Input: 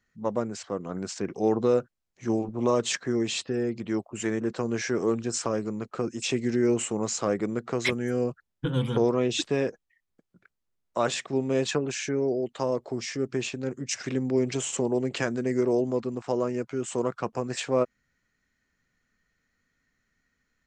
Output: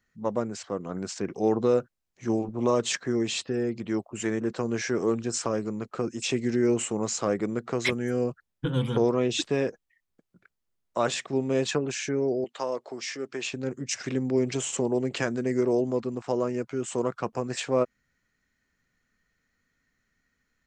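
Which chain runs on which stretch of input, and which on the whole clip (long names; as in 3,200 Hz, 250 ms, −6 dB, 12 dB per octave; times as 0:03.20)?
0:12.44–0:13.51: meter weighting curve A + upward compression, threshold −45 dBFS
whole clip: no processing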